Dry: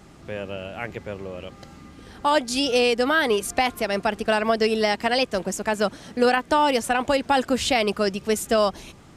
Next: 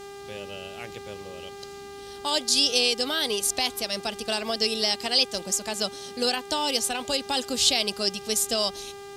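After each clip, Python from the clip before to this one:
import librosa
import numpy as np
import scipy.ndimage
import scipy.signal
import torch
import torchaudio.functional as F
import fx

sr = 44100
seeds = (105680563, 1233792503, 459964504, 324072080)

y = fx.high_shelf_res(x, sr, hz=2700.0, db=13.5, q=1.5)
y = fx.dmg_buzz(y, sr, base_hz=400.0, harmonics=39, level_db=-33.0, tilt_db=-7, odd_only=False)
y = F.gain(torch.from_numpy(y), -8.5).numpy()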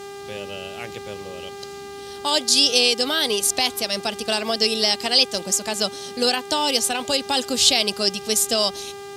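y = scipy.signal.sosfilt(scipy.signal.butter(2, 70.0, 'highpass', fs=sr, output='sos'), x)
y = F.gain(torch.from_numpy(y), 5.0).numpy()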